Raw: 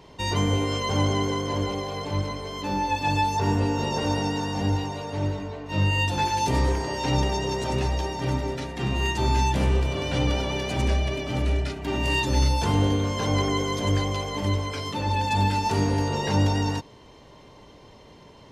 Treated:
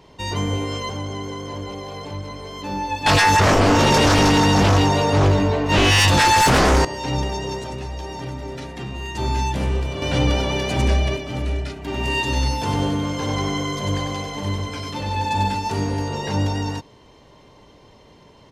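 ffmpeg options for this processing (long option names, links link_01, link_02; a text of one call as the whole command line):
ffmpeg -i in.wav -filter_complex "[0:a]asettb=1/sr,asplit=3[link_01][link_02][link_03];[link_01]atrim=end=0.894[link_04];[link_02]atrim=start=0.89:end=2.55,asetpts=PTS-STARTPTS,afade=type=in:duration=0.004:curve=qsin,afade=type=out:start_time=1.656:duration=0.004:curve=qsin,acompressor=threshold=-29dB:ratio=2:attack=3.2:release=140:knee=1:detection=peak[link_05];[link_03]atrim=start=2.546[link_06];[link_04][link_05]acrossfade=duration=0.004:curve1=hsin:curve2=qsin[link_07];[link_07][link_06]acrossfade=duration=0.004:curve1=qsin:curve2=hsin,asettb=1/sr,asplit=3[link_08][link_09][link_10];[link_08]atrim=end=3.064[link_11];[link_09]atrim=start=3.06:end=6.85,asetpts=PTS-STARTPTS,afade=type=in:duration=0.004:curve=qsin,afade=type=out:start_time=3.786:duration=0.004:curve=qsin,aeval=exprs='0.266*sin(PI/2*3.98*val(0)/0.266)':channel_layout=same[link_12];[link_10]atrim=start=6.846[link_13];[link_11][link_12]acrossfade=duration=0.004:curve1=hsin:curve2=qsin[link_14];[link_14][link_13]acrossfade=duration=0.004:curve1=qsin:curve2=hsin,asettb=1/sr,asplit=3[link_15][link_16][link_17];[link_15]atrim=end=7.584[link_18];[link_16]atrim=start=7.58:end=9.15,asetpts=PTS-STARTPTS,afade=type=in:duration=0.004:curve=qsin,afade=type=out:start_time=1.566:duration=0.004:curve=qsin,acompressor=threshold=-27dB:ratio=3:attack=3.2:release=140:knee=1:detection=peak[link_19];[link_17]atrim=start=9.146[link_20];[link_18][link_19]acrossfade=duration=0.004:curve1=hsin:curve2=qsin[link_21];[link_21][link_20]acrossfade=duration=0.004:curve1=qsin:curve2=hsin,asettb=1/sr,asplit=3[link_22][link_23][link_24];[link_22]atrim=end=10.024[link_25];[link_23]atrim=start=10.02:end=11.17,asetpts=PTS-STARTPTS,afade=type=in:duration=0.004:curve=qsin,afade=type=out:start_time=1.146:duration=0.004:curve=qsin,acontrast=32[link_26];[link_24]atrim=start=11.166[link_27];[link_25][link_26]acrossfade=duration=0.004:curve1=hsin:curve2=qsin[link_28];[link_28][link_27]acrossfade=duration=0.004:curve1=qsin:curve2=hsin,asplit=3[link_29][link_30][link_31];[link_29]afade=type=out:start_time=11.93:duration=0.02[link_32];[link_30]aecho=1:1:96|192|288|384|480|576|672:0.562|0.298|0.158|0.0837|0.0444|0.0235|0.0125,afade=type=in:start_time=11.93:duration=0.02,afade=type=out:start_time=15.54:duration=0.02[link_33];[link_31]afade=type=in:start_time=15.54:duration=0.02[link_34];[link_32][link_33][link_34]amix=inputs=3:normalize=0" out.wav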